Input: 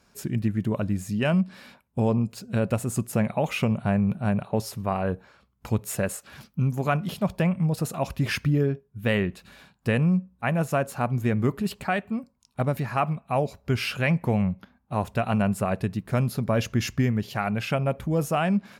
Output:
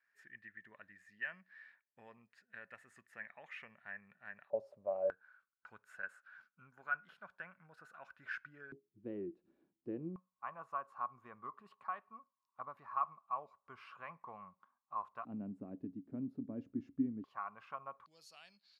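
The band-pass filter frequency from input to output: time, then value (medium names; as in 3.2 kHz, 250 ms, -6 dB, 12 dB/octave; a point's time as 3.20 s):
band-pass filter, Q 15
1.8 kHz
from 4.50 s 580 Hz
from 5.10 s 1.5 kHz
from 8.72 s 330 Hz
from 10.16 s 1.1 kHz
from 15.25 s 280 Hz
from 17.24 s 1.1 kHz
from 18.06 s 4.4 kHz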